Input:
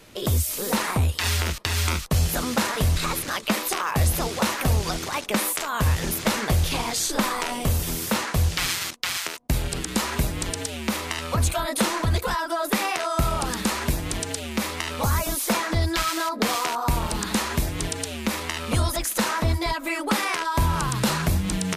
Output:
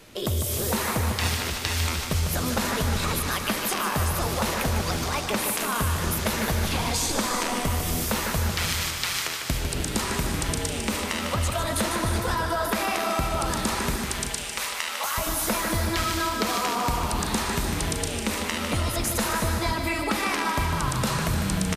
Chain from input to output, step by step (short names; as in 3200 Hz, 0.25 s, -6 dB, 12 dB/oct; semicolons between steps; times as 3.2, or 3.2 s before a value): 13.96–15.18 HPF 880 Hz 12 dB/oct; compressor, threshold -23 dBFS, peak gain reduction 6.5 dB; feedback echo 0.151 s, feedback 47%, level -7 dB; non-linear reverb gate 0.39 s rising, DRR 6 dB